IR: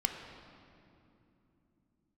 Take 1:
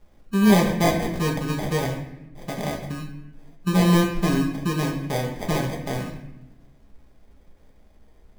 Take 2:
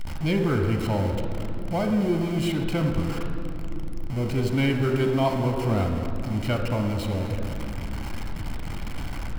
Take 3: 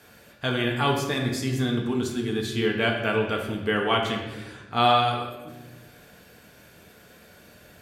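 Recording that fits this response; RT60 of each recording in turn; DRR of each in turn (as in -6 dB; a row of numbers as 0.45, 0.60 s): 2; 0.85, 3.0, 1.2 s; -1.0, 3.5, 0.5 dB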